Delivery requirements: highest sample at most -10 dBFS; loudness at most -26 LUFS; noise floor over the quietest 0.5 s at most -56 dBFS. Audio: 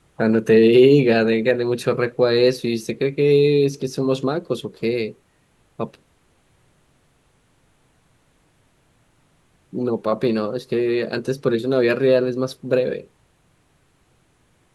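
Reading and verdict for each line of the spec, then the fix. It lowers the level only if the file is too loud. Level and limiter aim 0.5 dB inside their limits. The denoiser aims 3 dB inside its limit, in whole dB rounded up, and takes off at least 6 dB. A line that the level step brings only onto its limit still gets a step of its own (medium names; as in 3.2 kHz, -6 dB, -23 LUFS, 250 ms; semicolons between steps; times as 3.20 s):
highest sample -3.5 dBFS: fail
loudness -19.0 LUFS: fail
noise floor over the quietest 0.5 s -61 dBFS: pass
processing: trim -7.5 dB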